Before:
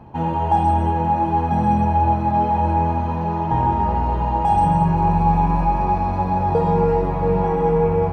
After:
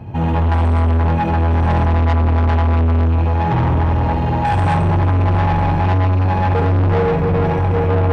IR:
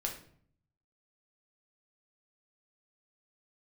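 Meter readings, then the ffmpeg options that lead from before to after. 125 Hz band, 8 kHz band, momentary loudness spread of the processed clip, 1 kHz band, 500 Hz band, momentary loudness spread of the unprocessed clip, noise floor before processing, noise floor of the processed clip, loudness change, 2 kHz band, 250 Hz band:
+8.0 dB, can't be measured, 1 LU, −3.0 dB, +1.0 dB, 4 LU, −23 dBFS, −17 dBFS, +3.0 dB, +10.5 dB, +1.5 dB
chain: -filter_complex "[0:a]equalizer=frequency=100:width_type=o:width=0.67:gain=12,equalizer=frequency=1000:width_type=o:width=0.67:gain=-7,equalizer=frequency=2500:width_type=o:width=0.67:gain=4,asplit=2[link_01][link_02];[1:a]atrim=start_sample=2205,asetrate=26019,aresample=44100,adelay=74[link_03];[link_02][link_03]afir=irnorm=-1:irlink=0,volume=-5.5dB[link_04];[link_01][link_04]amix=inputs=2:normalize=0,acontrast=56,asoftclip=type=tanh:threshold=-12.5dB"

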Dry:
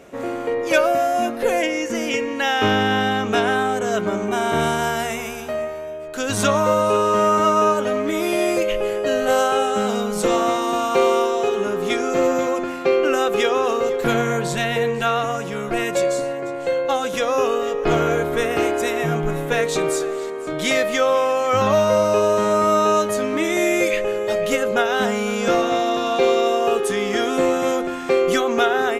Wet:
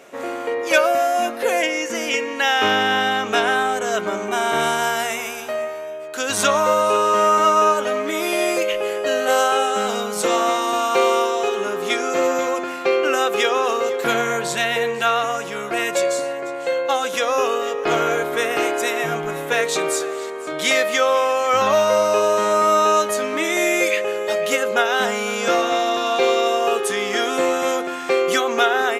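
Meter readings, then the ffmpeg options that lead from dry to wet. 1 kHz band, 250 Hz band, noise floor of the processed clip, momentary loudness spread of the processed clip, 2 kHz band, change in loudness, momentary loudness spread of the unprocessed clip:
+2.0 dB, −4.5 dB, −29 dBFS, 7 LU, +3.0 dB, +0.5 dB, 7 LU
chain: -af "highpass=frequency=660:poles=1,volume=3.5dB"

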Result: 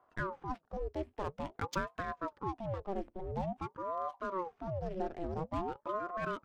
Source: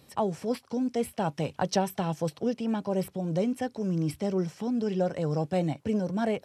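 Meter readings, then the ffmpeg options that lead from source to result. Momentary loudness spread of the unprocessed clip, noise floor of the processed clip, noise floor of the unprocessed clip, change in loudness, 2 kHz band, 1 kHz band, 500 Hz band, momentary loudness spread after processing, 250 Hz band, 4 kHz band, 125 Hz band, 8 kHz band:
3 LU, −73 dBFS, −61 dBFS, −9.5 dB, −1.5 dB, −3.5 dB, −9.5 dB, 3 LU, −14.5 dB, −12.5 dB, −11.0 dB, −16.0 dB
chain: -af "adynamicsmooth=sensitivity=6.5:basefreq=840,aeval=exprs='val(0)*sin(2*PI*520*n/s+520*0.7/0.49*sin(2*PI*0.49*n/s))':channel_layout=same,volume=-6.5dB"

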